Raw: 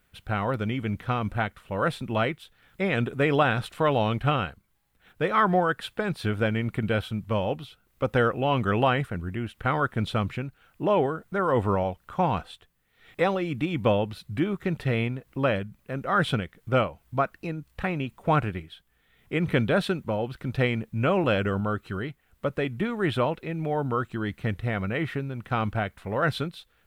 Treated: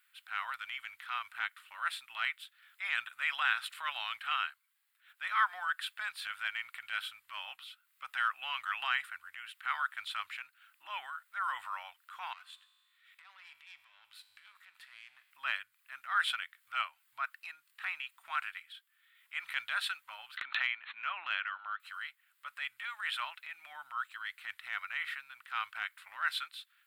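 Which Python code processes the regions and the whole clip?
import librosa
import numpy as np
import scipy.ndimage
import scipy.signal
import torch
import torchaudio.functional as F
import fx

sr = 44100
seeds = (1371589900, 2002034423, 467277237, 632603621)

y = fx.chain(x, sr, fx.over_compress(threshold_db=-32.0, ratio=-1.0),
    fx.tube_stage(drive_db=29.0, bias=0.65),
    fx.comb_fb(f0_hz=50.0, decay_s=1.9, harmonics='all', damping=0.0, mix_pct=60), at=(12.33, 15.31))
y = fx.chain(y, sr, fx.brickwall_bandpass(low_hz=200.0, high_hz=4300.0),
    fx.air_absorb(metres=150.0),
    fx.pre_swell(db_per_s=40.0), at=(20.37, 21.8))
y = scipy.signal.sosfilt(scipy.signal.cheby2(4, 50, 490.0, 'highpass', fs=sr, output='sos'), y)
y = fx.peak_eq(y, sr, hz=6000.0, db=-8.0, octaves=0.33)
y = fx.transient(y, sr, attack_db=-7, sustain_db=-1)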